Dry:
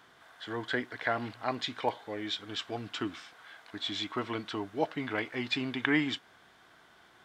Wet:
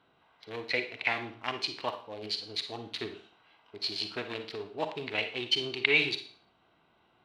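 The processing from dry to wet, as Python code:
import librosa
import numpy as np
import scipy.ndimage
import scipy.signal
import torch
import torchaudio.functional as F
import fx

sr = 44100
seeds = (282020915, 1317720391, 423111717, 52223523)

y = fx.wiener(x, sr, points=25)
y = fx.band_shelf(y, sr, hz=2400.0, db=10.5, octaves=1.2)
y = fx.formant_shift(y, sr, semitones=4)
y = fx.rev_schroeder(y, sr, rt60_s=0.45, comb_ms=38, drr_db=7.5)
y = F.gain(torch.from_numpy(y), -3.0).numpy()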